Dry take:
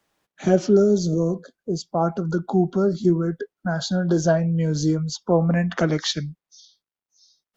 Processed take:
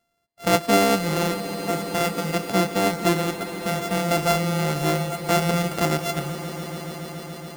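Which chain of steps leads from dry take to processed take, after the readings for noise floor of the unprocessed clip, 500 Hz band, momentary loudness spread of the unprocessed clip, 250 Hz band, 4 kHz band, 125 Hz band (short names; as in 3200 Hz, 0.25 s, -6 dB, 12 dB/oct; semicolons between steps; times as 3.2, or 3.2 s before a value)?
under -85 dBFS, -2.0 dB, 10 LU, -3.5 dB, +3.5 dB, -3.5 dB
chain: sample sorter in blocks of 64 samples; on a send: swelling echo 0.141 s, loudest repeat 5, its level -16 dB; on the sum: gain -2 dB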